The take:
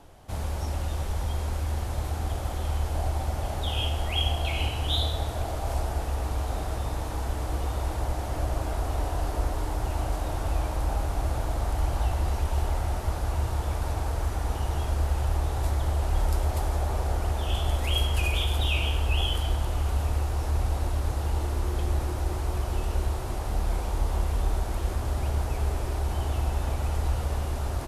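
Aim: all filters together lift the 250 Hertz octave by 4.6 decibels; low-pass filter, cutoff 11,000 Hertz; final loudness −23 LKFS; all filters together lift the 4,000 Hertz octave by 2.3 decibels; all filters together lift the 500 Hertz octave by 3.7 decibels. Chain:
low-pass filter 11,000 Hz
parametric band 250 Hz +5 dB
parametric band 500 Hz +3.5 dB
parametric band 4,000 Hz +3 dB
level +5.5 dB

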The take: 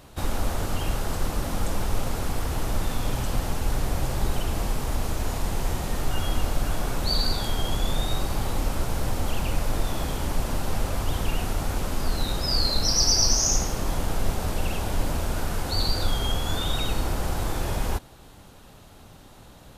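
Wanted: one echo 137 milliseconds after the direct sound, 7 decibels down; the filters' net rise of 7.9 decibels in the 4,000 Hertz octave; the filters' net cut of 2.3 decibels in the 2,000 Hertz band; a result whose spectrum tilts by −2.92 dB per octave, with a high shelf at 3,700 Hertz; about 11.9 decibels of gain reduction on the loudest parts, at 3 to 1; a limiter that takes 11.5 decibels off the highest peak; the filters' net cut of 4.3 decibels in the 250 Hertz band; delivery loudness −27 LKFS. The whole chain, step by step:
parametric band 250 Hz −6 dB
parametric band 2,000 Hz −7 dB
high-shelf EQ 3,700 Hz +6.5 dB
parametric band 4,000 Hz +6.5 dB
downward compressor 3 to 1, threshold −27 dBFS
brickwall limiter −24 dBFS
single-tap delay 137 ms −7 dB
level +6.5 dB

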